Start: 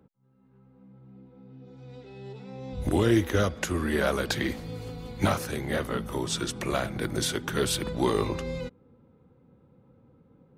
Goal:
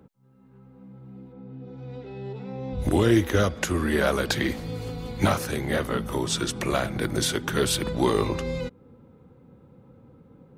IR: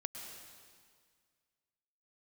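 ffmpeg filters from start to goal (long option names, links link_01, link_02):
-filter_complex "[0:a]asplit=3[link_01][link_02][link_03];[link_01]afade=type=out:start_time=1.32:duration=0.02[link_04];[link_02]aemphasis=mode=reproduction:type=75fm,afade=type=in:start_time=1.32:duration=0.02,afade=type=out:start_time=2.78:duration=0.02[link_05];[link_03]afade=type=in:start_time=2.78:duration=0.02[link_06];[link_04][link_05][link_06]amix=inputs=3:normalize=0,asplit=2[link_07][link_08];[link_08]acompressor=threshold=-40dB:ratio=6,volume=-3dB[link_09];[link_07][link_09]amix=inputs=2:normalize=0,volume=2dB"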